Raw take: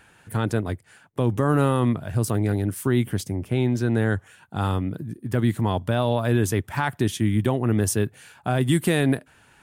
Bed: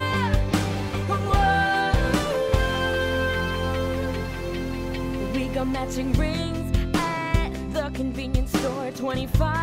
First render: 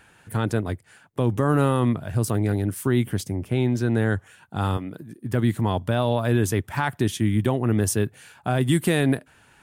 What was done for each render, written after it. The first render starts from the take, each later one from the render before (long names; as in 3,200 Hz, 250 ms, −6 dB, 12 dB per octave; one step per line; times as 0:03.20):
0:04.77–0:05.22: high-pass filter 370 Hz 6 dB per octave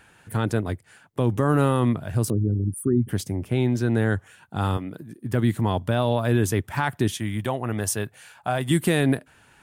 0:02.30–0:03.09: spectral envelope exaggerated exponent 3
0:07.14–0:08.71: low shelf with overshoot 480 Hz −6 dB, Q 1.5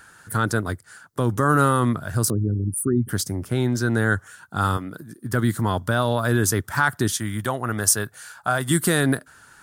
0:02.51–0:02.85: gain on a spectral selection 620–4,000 Hz −10 dB
drawn EQ curve 850 Hz 0 dB, 1,400 Hz +11 dB, 2,500 Hz −5 dB, 4,700 Hz +9 dB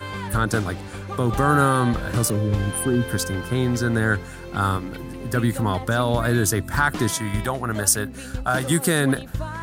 mix in bed −7.5 dB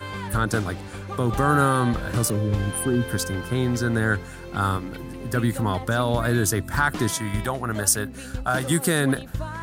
level −1.5 dB